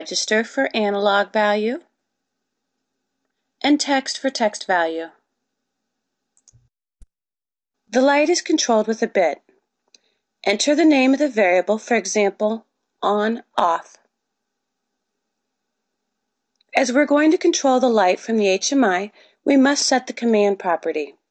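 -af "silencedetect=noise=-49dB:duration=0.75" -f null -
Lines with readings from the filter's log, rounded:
silence_start: 1.87
silence_end: 3.61 | silence_duration: 1.74
silence_start: 5.16
silence_end: 6.37 | silence_duration: 1.21
silence_start: 7.03
silence_end: 7.90 | silence_duration: 0.86
silence_start: 13.98
silence_end: 16.61 | silence_duration: 2.63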